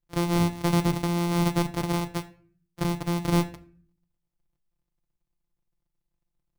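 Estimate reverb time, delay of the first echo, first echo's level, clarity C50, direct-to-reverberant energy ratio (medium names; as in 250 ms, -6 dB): 0.50 s, no echo, no echo, 17.0 dB, 7.5 dB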